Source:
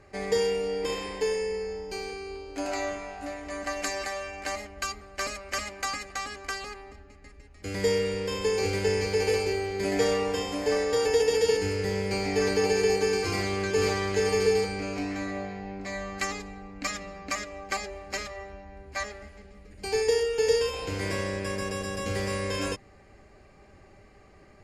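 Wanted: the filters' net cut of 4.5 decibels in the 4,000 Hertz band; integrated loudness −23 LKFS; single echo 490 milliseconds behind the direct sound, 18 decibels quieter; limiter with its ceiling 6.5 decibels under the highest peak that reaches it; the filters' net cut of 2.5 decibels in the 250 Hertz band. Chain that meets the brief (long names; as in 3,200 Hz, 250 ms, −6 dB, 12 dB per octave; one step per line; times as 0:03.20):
parametric band 250 Hz −3.5 dB
parametric band 4,000 Hz −6 dB
brickwall limiter −19 dBFS
single-tap delay 490 ms −18 dB
level +8 dB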